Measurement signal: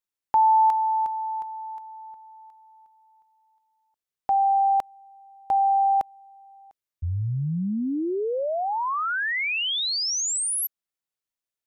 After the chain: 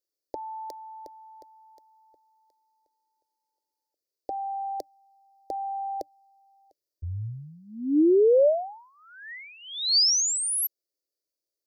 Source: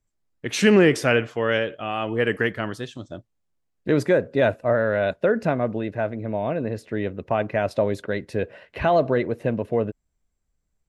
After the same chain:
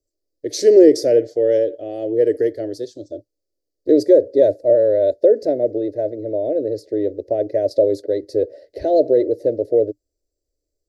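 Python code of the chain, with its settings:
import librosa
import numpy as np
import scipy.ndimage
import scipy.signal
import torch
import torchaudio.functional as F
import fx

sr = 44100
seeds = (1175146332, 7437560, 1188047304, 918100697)

y = fx.curve_eq(x, sr, hz=(110.0, 190.0, 300.0, 590.0, 1100.0, 1900.0, 2700.0, 4600.0, 8300.0, 13000.0), db=(0, -20, 13, 14, -30, -7, -19, 13, 3, 7))
y = F.gain(torch.from_numpy(y), -5.5).numpy()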